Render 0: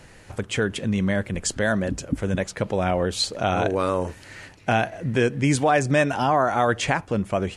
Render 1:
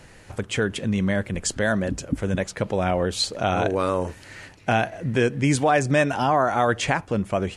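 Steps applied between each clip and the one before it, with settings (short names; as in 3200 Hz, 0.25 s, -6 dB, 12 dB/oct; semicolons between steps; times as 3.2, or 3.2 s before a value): nothing audible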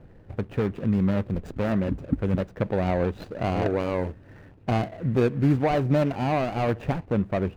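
median filter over 41 samples; tone controls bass +1 dB, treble -10 dB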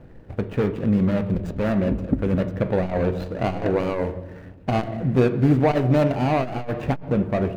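on a send at -9 dB: reverb RT60 1.0 s, pre-delay 3 ms; on the sum: core saturation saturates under 210 Hz; gain +4 dB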